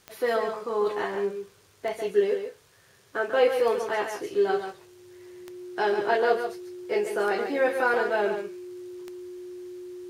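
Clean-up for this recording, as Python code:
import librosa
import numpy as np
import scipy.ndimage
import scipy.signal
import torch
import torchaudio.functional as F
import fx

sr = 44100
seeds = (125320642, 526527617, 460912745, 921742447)

y = fx.fix_declick_ar(x, sr, threshold=10.0)
y = fx.notch(y, sr, hz=360.0, q=30.0)
y = fx.fix_echo_inverse(y, sr, delay_ms=141, level_db=-7.5)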